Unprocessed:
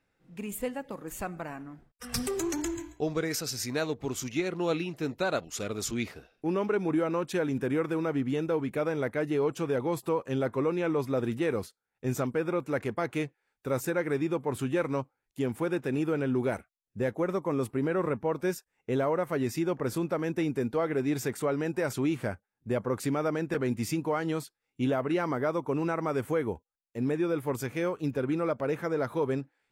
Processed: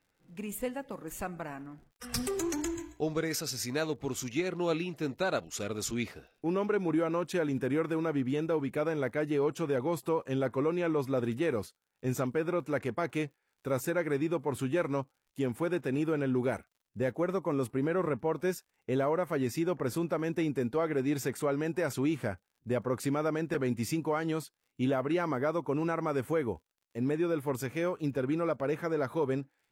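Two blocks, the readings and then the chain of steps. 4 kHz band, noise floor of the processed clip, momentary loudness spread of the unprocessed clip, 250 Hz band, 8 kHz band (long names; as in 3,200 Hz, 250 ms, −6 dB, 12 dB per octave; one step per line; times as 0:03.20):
−1.5 dB, −81 dBFS, 8 LU, −1.5 dB, −1.5 dB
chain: surface crackle 63 per second −57 dBFS
level −1.5 dB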